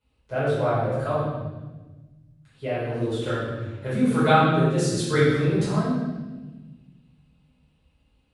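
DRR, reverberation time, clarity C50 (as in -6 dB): -12.5 dB, 1.2 s, -2.0 dB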